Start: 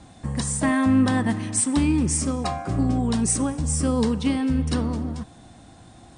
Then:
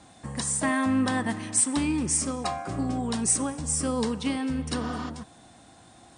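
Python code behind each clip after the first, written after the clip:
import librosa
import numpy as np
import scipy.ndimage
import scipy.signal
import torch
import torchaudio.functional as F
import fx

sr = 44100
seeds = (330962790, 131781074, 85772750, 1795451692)

y = fx.tilt_eq(x, sr, slope=3.0)
y = fx.spec_repair(y, sr, seeds[0], start_s=4.83, length_s=0.24, low_hz=670.0, high_hz=7900.0, source='before')
y = fx.high_shelf(y, sr, hz=2200.0, db=-9.5)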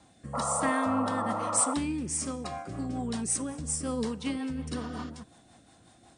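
y = fx.rotary_switch(x, sr, hz=1.1, then_hz=5.5, switch_at_s=1.94)
y = fx.spec_paint(y, sr, seeds[1], shape='noise', start_s=0.33, length_s=1.41, low_hz=460.0, high_hz=1400.0, level_db=-29.0)
y = F.gain(torch.from_numpy(y), -3.0).numpy()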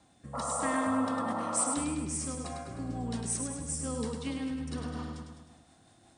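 y = fx.echo_feedback(x, sr, ms=103, feedback_pct=55, wet_db=-5.5)
y = F.gain(torch.from_numpy(y), -4.5).numpy()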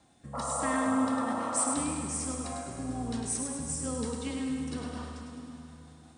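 y = fx.rev_plate(x, sr, seeds[2], rt60_s=3.6, hf_ratio=0.95, predelay_ms=0, drr_db=5.5)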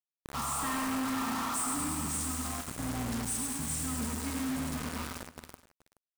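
y = fx.fixed_phaser(x, sr, hz=1300.0, stages=4)
y = fx.quant_companded(y, sr, bits=2)
y = y + 10.0 ** (-19.0 / 20.0) * np.pad(y, (int(426 * sr / 1000.0), 0))[:len(y)]
y = F.gain(torch.from_numpy(y), -6.0).numpy()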